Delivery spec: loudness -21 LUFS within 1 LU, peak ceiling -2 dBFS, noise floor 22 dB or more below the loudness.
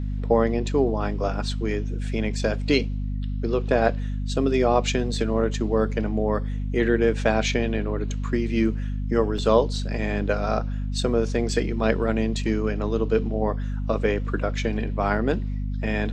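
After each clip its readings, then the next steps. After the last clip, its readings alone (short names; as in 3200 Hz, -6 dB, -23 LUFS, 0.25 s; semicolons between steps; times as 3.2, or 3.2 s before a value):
dropouts 1; longest dropout 3.5 ms; hum 50 Hz; harmonics up to 250 Hz; hum level -25 dBFS; loudness -24.5 LUFS; peak -4.5 dBFS; loudness target -21.0 LUFS
-> interpolate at 9.38, 3.5 ms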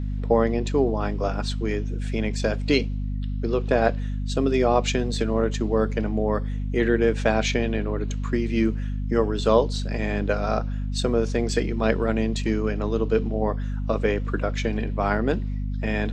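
dropouts 0; hum 50 Hz; harmonics up to 250 Hz; hum level -25 dBFS
-> de-hum 50 Hz, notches 5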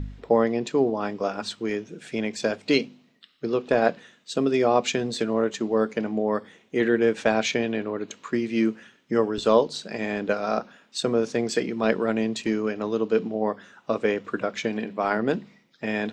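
hum none; loudness -25.5 LUFS; peak -5.5 dBFS; loudness target -21.0 LUFS
-> gain +4.5 dB; limiter -2 dBFS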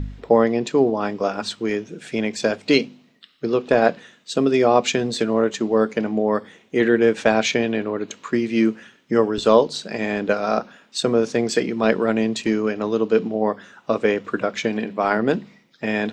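loudness -21.0 LUFS; peak -2.0 dBFS; noise floor -57 dBFS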